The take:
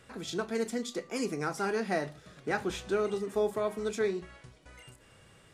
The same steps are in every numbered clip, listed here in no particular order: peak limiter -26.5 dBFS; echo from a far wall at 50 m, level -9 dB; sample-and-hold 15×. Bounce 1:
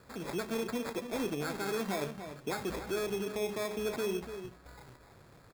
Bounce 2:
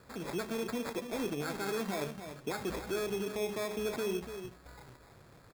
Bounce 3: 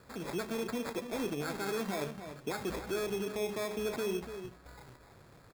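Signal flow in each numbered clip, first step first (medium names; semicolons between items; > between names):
sample-and-hold > peak limiter > echo from a far wall; peak limiter > echo from a far wall > sample-and-hold; peak limiter > sample-and-hold > echo from a far wall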